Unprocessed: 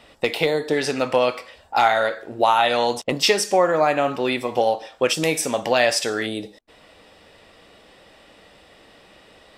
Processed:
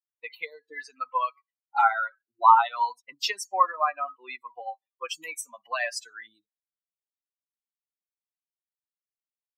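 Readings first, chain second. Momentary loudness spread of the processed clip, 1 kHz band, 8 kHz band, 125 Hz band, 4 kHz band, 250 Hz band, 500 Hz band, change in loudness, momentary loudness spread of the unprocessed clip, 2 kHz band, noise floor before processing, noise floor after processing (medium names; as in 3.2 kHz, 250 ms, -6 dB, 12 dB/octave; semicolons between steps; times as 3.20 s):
20 LU, -1.5 dB, -12.0 dB, under -40 dB, -12.0 dB, under -30 dB, -20.0 dB, -5.5 dB, 8 LU, -8.0 dB, -52 dBFS, under -85 dBFS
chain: expander on every frequency bin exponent 3; resonant high-pass 1 kHz, resonance Q 6.4; peaking EQ 1.3 kHz +6 dB 0.57 oct; trim -6.5 dB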